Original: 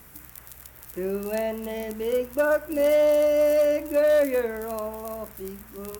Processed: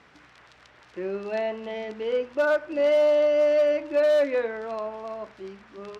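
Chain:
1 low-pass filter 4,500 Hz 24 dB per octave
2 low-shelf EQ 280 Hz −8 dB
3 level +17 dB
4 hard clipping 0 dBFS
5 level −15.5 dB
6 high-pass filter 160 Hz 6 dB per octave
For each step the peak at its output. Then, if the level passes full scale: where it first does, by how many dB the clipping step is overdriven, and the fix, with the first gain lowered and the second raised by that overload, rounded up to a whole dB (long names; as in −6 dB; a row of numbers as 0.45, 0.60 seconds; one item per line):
−12.5, −13.5, +3.5, 0.0, −15.5, −14.5 dBFS
step 3, 3.5 dB
step 3 +13 dB, step 5 −11.5 dB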